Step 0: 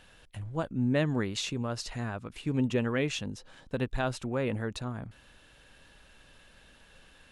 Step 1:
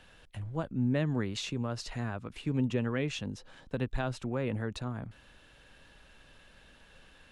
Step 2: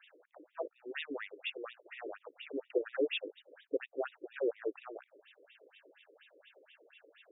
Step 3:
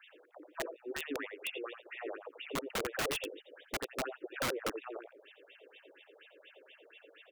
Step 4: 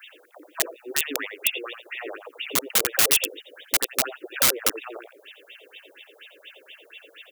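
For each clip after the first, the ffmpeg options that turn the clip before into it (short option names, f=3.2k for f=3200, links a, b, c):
-filter_complex "[0:a]highshelf=f=7.1k:g=-6.5,acrossover=split=220[a][b];[b]acompressor=threshold=-37dB:ratio=1.5[c];[a][c]amix=inputs=2:normalize=0"
-filter_complex "[0:a]acrossover=split=720|1900[a][b][c];[b]acrusher=samples=42:mix=1:aa=0.000001[d];[a][d][c]amix=inputs=3:normalize=0,afftfilt=real='re*between(b*sr/1024,390*pow(2700/390,0.5+0.5*sin(2*PI*4.2*pts/sr))/1.41,390*pow(2700/390,0.5+0.5*sin(2*PI*4.2*pts/sr))*1.41)':imag='im*between(b*sr/1024,390*pow(2700/390,0.5+0.5*sin(2*PI*4.2*pts/sr))/1.41,390*pow(2700/390,0.5+0.5*sin(2*PI*4.2*pts/sr))*1.41)':win_size=1024:overlap=0.75,volume=6.5dB"
-filter_complex "[0:a]acrossover=split=360[a][b];[b]acompressor=threshold=-44dB:ratio=1.5[c];[a][c]amix=inputs=2:normalize=0,aecho=1:1:86:0.398,aeval=exprs='(mod(37.6*val(0)+1,2)-1)/37.6':c=same,volume=3dB"
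-af "crystalizer=i=6:c=0,volume=4.5dB"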